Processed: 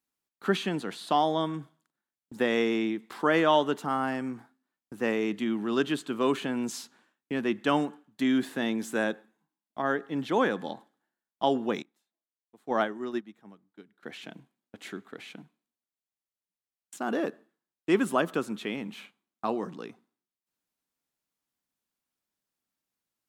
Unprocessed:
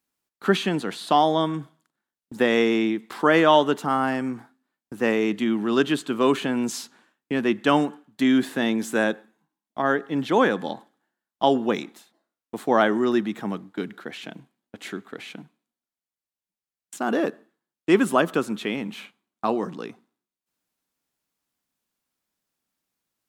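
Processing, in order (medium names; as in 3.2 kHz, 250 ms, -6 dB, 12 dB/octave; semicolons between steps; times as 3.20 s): 11.82–14.03 s: upward expansion 2.5:1, over -30 dBFS; trim -6 dB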